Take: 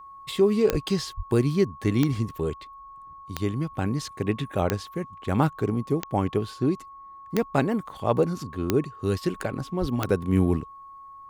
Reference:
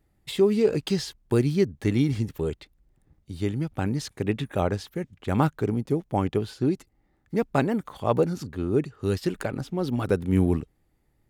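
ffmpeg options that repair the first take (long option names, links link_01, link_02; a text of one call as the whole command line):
ffmpeg -i in.wav -filter_complex "[0:a]adeclick=threshold=4,bandreject=frequency=1100:width=30,asplit=3[link_01][link_02][link_03];[link_01]afade=type=out:start_time=0.71:duration=0.02[link_04];[link_02]highpass=frequency=140:width=0.5412,highpass=frequency=140:width=1.3066,afade=type=in:start_time=0.71:duration=0.02,afade=type=out:start_time=0.83:duration=0.02[link_05];[link_03]afade=type=in:start_time=0.83:duration=0.02[link_06];[link_04][link_05][link_06]amix=inputs=3:normalize=0,asplit=3[link_07][link_08][link_09];[link_07]afade=type=out:start_time=1.16:duration=0.02[link_10];[link_08]highpass=frequency=140:width=0.5412,highpass=frequency=140:width=1.3066,afade=type=in:start_time=1.16:duration=0.02,afade=type=out:start_time=1.28:duration=0.02[link_11];[link_09]afade=type=in:start_time=1.28:duration=0.02[link_12];[link_10][link_11][link_12]amix=inputs=3:normalize=0,asplit=3[link_13][link_14][link_15];[link_13]afade=type=out:start_time=9.8:duration=0.02[link_16];[link_14]highpass=frequency=140:width=0.5412,highpass=frequency=140:width=1.3066,afade=type=in:start_time=9.8:duration=0.02,afade=type=out:start_time=9.92:duration=0.02[link_17];[link_15]afade=type=in:start_time=9.92:duration=0.02[link_18];[link_16][link_17][link_18]amix=inputs=3:normalize=0" out.wav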